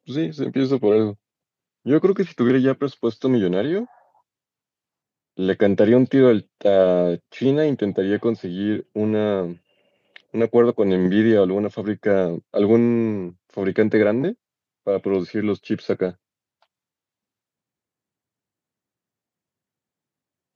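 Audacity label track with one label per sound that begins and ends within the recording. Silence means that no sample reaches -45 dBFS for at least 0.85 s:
5.370000	16.630000	sound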